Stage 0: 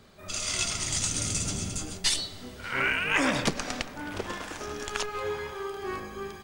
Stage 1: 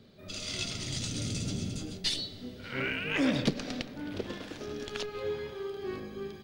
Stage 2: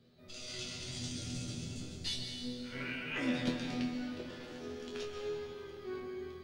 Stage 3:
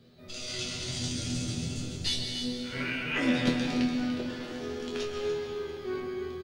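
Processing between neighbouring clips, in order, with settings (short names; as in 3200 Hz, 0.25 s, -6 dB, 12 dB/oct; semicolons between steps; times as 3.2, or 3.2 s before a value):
graphic EQ 125/250/500/1000/4000/8000 Hz +8/+8/+6/-6/+8/-8 dB; gain -8 dB
resonator bank E2 fifth, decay 0.31 s; reverb RT60 2.3 s, pre-delay 0.123 s, DRR 3.5 dB; gain +3 dB
echo 0.292 s -10 dB; gain +7.5 dB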